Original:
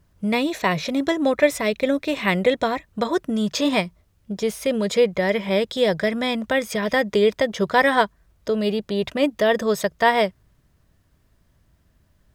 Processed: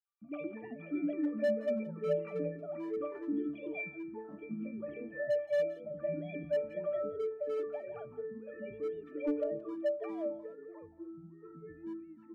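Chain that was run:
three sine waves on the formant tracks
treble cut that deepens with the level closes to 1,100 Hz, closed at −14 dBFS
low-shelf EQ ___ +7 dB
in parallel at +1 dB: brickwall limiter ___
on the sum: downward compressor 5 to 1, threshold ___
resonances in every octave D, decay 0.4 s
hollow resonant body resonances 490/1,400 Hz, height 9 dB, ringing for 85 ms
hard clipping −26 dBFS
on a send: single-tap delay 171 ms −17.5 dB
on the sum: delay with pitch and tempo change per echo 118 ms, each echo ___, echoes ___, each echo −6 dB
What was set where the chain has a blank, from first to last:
200 Hz, −13 dBFS, −19 dBFS, −5 semitones, 2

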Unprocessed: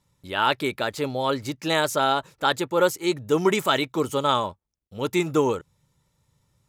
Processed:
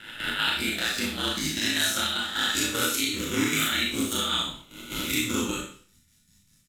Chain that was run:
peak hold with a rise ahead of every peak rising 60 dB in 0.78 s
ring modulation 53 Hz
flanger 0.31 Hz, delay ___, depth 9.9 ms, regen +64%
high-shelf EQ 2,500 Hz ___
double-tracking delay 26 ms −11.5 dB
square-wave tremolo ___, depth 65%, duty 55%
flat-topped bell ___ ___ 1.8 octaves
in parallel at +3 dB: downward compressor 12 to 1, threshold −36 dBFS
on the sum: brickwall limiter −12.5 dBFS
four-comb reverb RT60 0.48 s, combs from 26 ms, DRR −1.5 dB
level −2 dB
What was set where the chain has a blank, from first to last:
10 ms, +10.5 dB, 5.1 Hz, 690 Hz, −14.5 dB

